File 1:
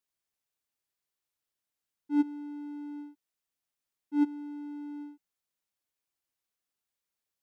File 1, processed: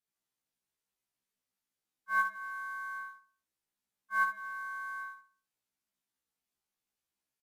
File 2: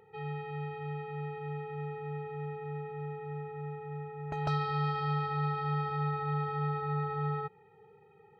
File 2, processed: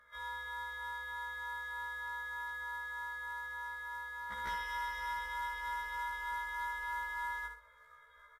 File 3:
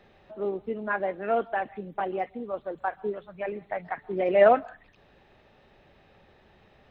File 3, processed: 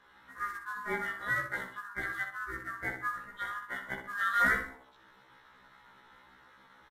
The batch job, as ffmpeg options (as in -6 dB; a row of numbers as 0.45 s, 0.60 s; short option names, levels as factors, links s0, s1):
-filter_complex "[0:a]afftfilt=real='real(if(lt(b,960),b+48*(1-2*mod(floor(b/48),2)),b),0)':imag='imag(if(lt(b,960),b+48*(1-2*mod(floor(b/48),2)),b),0)':win_size=2048:overlap=0.75,lowshelf=f=110:g=9.5,bandreject=f=50:t=h:w=6,bandreject=f=100:t=h:w=6,bandreject=f=150:t=h:w=6,bandreject=f=200:t=h:w=6,bandreject=f=250:t=h:w=6,bandreject=f=300:t=h:w=6,bandreject=f=350:t=h:w=6,asplit=2[s0][s1];[s1]adelay=62,lowpass=f=2400:p=1,volume=0.501,asplit=2[s2][s3];[s3]adelay=62,lowpass=f=2400:p=1,volume=0.38,asplit=2[s4][s5];[s5]adelay=62,lowpass=f=2400:p=1,volume=0.38,asplit=2[s6][s7];[s7]adelay=62,lowpass=f=2400:p=1,volume=0.38,asplit=2[s8][s9];[s9]adelay=62,lowpass=f=2400:p=1,volume=0.38[s10];[s0][s2][s4][s6][s8][s10]amix=inputs=6:normalize=0,asplit=2[s11][s12];[s12]acompressor=threshold=0.00708:ratio=4,volume=1.26[s13];[s11][s13]amix=inputs=2:normalize=0,acrusher=bits=5:mode=log:mix=0:aa=0.000001,aeval=exprs='val(0)*sin(2*PI*220*n/s)':c=same,dynaudnorm=f=100:g=3:m=1.58,aresample=32000,aresample=44100,afftfilt=real='re*1.73*eq(mod(b,3),0)':imag='im*1.73*eq(mod(b,3),0)':win_size=2048:overlap=0.75,volume=0.422"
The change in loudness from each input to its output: -0.5 LU, -4.5 LU, -6.0 LU